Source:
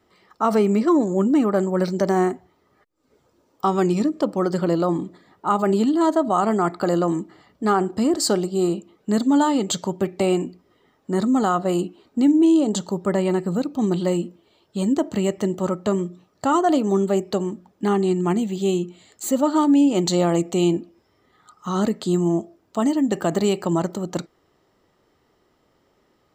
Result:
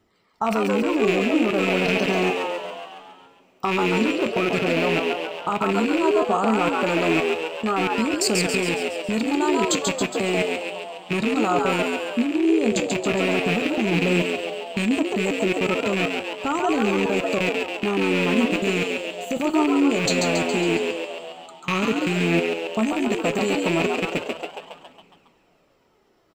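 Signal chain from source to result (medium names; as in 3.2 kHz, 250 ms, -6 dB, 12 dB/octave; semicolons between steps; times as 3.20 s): rattle on loud lows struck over -28 dBFS, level -14 dBFS; level held to a coarse grid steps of 24 dB; on a send: frequency-shifting echo 138 ms, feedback 56%, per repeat +80 Hz, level -3.5 dB; on the sum: two-slope reverb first 0.31 s, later 3.3 s, from -21 dB, DRR 11.5 dB; in parallel at -2 dB: compression, threshold -37 dBFS, peak gain reduction 18 dB; on the sum: flange 0.12 Hz, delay 0.3 ms, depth 8.8 ms, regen +66%; trim +5 dB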